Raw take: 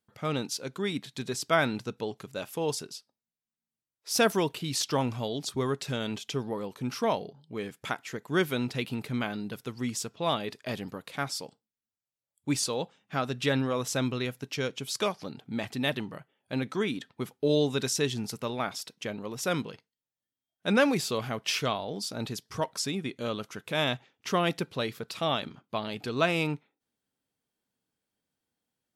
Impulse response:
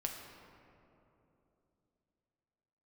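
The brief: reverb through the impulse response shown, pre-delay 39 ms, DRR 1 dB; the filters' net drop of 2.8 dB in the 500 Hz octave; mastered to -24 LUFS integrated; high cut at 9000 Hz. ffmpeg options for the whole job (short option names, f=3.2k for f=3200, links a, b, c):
-filter_complex "[0:a]lowpass=9k,equalizer=f=500:t=o:g=-3.5,asplit=2[a][b];[1:a]atrim=start_sample=2205,adelay=39[c];[b][c]afir=irnorm=-1:irlink=0,volume=-1.5dB[d];[a][d]amix=inputs=2:normalize=0,volume=5.5dB"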